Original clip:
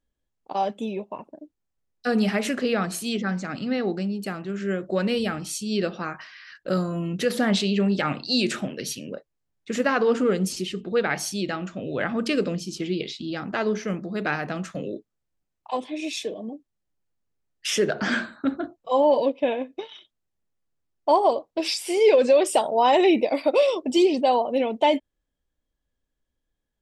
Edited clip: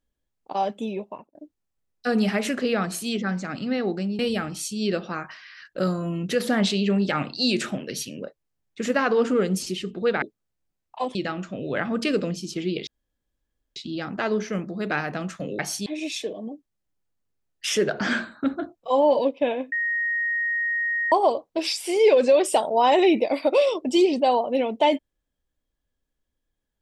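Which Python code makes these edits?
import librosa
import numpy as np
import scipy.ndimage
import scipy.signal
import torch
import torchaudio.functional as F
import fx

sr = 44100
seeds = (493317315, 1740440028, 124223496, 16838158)

y = fx.edit(x, sr, fx.fade_out_span(start_s=1.07, length_s=0.28),
    fx.cut(start_s=4.19, length_s=0.9),
    fx.swap(start_s=11.12, length_s=0.27, other_s=14.94, other_length_s=0.93),
    fx.insert_room_tone(at_s=13.11, length_s=0.89),
    fx.bleep(start_s=19.73, length_s=1.4, hz=1870.0, db=-22.0), tone=tone)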